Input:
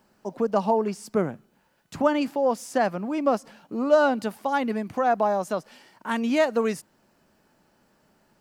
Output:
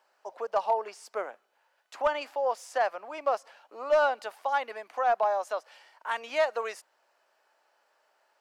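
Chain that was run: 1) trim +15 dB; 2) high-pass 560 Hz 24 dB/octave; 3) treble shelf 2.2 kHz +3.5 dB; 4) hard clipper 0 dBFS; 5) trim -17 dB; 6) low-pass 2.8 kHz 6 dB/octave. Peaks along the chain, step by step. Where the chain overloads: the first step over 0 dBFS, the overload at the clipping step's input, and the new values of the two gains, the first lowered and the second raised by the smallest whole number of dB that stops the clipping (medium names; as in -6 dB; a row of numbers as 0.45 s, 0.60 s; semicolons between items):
+7.5 dBFS, +5.0 dBFS, +5.5 dBFS, 0.0 dBFS, -17.0 dBFS, -17.0 dBFS; step 1, 5.5 dB; step 1 +9 dB, step 5 -11 dB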